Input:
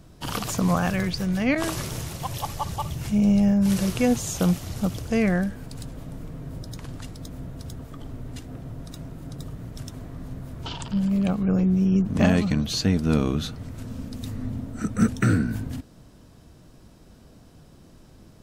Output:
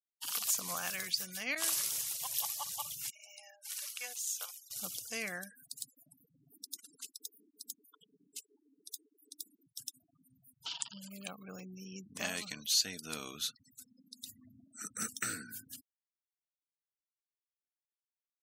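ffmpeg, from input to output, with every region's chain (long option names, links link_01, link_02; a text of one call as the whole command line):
ffmpeg -i in.wav -filter_complex "[0:a]asettb=1/sr,asplit=3[link_01][link_02][link_03];[link_01]atrim=end=3.104[link_04];[link_02]atrim=start=3.1:end=4.71,asetpts=PTS-STARTPTS,afade=type=in:duration=0.004:curve=qsin,afade=type=out:start_time=1.606:duration=0.004:curve=qsin,highpass=920,highshelf=frequency=2700:gain=-7.5,aeval=exprs='sgn(val(0))*max(abs(val(0))-0.00211,0)':channel_layout=same[link_05];[link_03]atrim=start=4.706[link_06];[link_04][link_05]acrossfade=duration=0.004:curve1=hsin:curve2=qsin[link_07];[link_07][link_06]acrossfade=duration=0.004:curve1=qsin:curve2=hsin,asettb=1/sr,asplit=3[link_08][link_09][link_10];[link_08]atrim=end=6.514[link_11];[link_09]atrim=start=6.51:end=9.67,asetpts=PTS-STARTPTS,afade=type=in:duration=0.004:curve=qsin,afade=type=out:start_time=3.156:duration=0.004:curve=qsin,highshelf=frequency=3700:gain=4,aeval=exprs='val(0)*sin(2*PI*160*n/s)':channel_layout=same,bandreject=frequency=1800:width=12[link_12];[link_10]atrim=start=9.666[link_13];[link_11][link_12]acrossfade=duration=0.004:curve1=hsin:curve2=qsin[link_14];[link_14][link_13]acrossfade=duration=0.004:curve1=qsin:curve2=hsin,asettb=1/sr,asplit=3[link_15][link_16][link_17];[link_15]atrim=end=13.844[link_18];[link_16]atrim=start=13.84:end=14.29,asetpts=PTS-STARTPTS,afade=type=in:duration=0.004:curve=qsin,afade=type=out:start_time=0.446:duration=0.004:curve=qsin,highpass=frequency=92:poles=1,highshelf=frequency=6500:gain=-6[link_19];[link_17]atrim=start=14.286[link_20];[link_18][link_19]acrossfade=duration=0.004:curve1=hsin:curve2=qsin[link_21];[link_21][link_20]acrossfade=duration=0.004:curve1=qsin:curve2=hsin,dynaudnorm=framelen=180:gausssize=7:maxgain=3dB,aderivative,afftfilt=real='re*gte(hypot(re,im),0.00355)':imag='im*gte(hypot(re,im),0.00355)':win_size=1024:overlap=0.75" out.wav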